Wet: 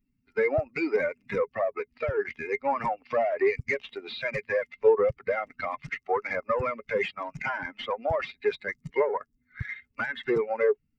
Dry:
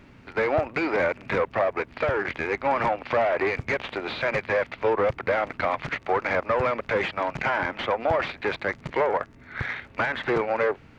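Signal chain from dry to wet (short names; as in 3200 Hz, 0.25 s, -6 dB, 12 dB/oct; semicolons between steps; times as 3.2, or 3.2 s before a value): per-bin expansion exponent 2; small resonant body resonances 420/2100/3800 Hz, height 9 dB, ringing for 50 ms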